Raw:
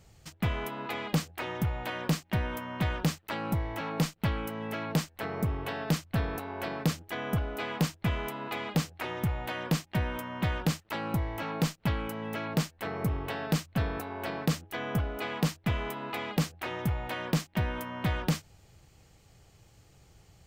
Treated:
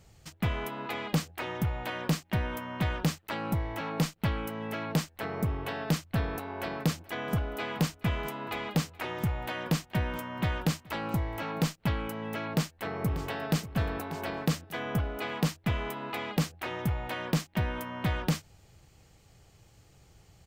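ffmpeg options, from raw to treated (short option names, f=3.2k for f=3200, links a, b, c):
-filter_complex "[0:a]asettb=1/sr,asplit=3[a][b][c];[a]atrim=end=6.234[d];[b]atrim=start=6.23:end=11.62,asetpts=PTS-STARTPTS,afade=t=in:d=0.004:c=qsin,afade=t=out:st=5.386:d=0.004:c=qsin,aecho=1:1:425:0.0708,atrim=end_sample=237699[e];[c]atrim=start=11.616[f];[d][e]acrossfade=d=0.004:c1=hsin:c2=qsin[g];[g][f]acrossfade=d=0.004:c1=qsin:c2=hsin,asplit=2[h][i];[i]afade=t=in:st=12.52:d=0.01,afade=t=out:st=13.62:d=0.01,aecho=0:1:590|1180|1770:0.211349|0.0634047|0.0190214[j];[h][j]amix=inputs=2:normalize=0"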